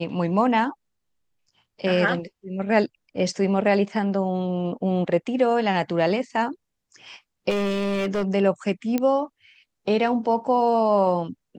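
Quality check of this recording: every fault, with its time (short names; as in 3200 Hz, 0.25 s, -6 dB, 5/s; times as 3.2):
7.49–8.28 clipped -20.5 dBFS
8.98 pop -11 dBFS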